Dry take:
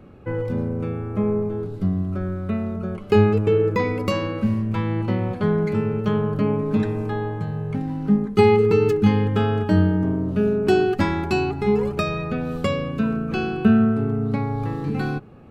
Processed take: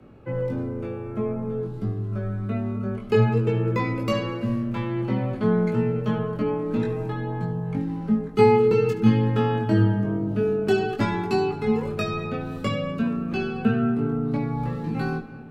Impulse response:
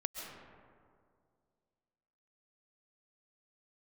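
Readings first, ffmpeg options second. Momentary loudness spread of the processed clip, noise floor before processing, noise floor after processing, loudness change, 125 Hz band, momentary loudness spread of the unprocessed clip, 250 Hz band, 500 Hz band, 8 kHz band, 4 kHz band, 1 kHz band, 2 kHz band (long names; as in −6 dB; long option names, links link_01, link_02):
9 LU, −34 dBFS, −35 dBFS, −2.5 dB, −2.0 dB, 9 LU, −3.0 dB, −2.5 dB, can't be measured, −2.5 dB, −1.5 dB, −3.0 dB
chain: -filter_complex "[0:a]flanger=delay=19:depth=2.7:speed=0.53,afreqshift=15,asplit=2[link_01][link_02];[1:a]atrim=start_sample=2205,adelay=73[link_03];[link_02][link_03]afir=irnorm=-1:irlink=0,volume=-13.5dB[link_04];[link_01][link_04]amix=inputs=2:normalize=0"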